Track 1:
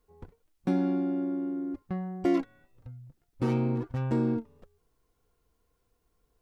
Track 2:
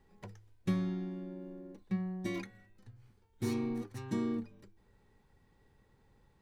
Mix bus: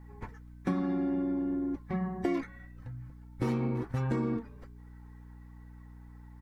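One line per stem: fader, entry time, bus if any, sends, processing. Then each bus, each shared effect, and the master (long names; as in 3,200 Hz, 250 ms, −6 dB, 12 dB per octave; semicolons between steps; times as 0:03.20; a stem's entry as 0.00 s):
+1.5 dB, 0.00 s, no send, mains hum 60 Hz, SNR 19 dB
−5.5 dB, 0.9 ms, no send, random phases in long frames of 50 ms; flat-topped bell 1,300 Hz +14.5 dB; comb filter 4.6 ms, depth 56%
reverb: not used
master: downward compressor 5 to 1, threshold −27 dBFS, peak gain reduction 8 dB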